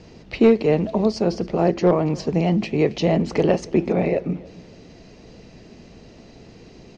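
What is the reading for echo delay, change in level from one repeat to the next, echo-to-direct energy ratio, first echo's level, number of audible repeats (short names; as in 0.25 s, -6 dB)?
0.279 s, -10.0 dB, -22.0 dB, -22.5 dB, 2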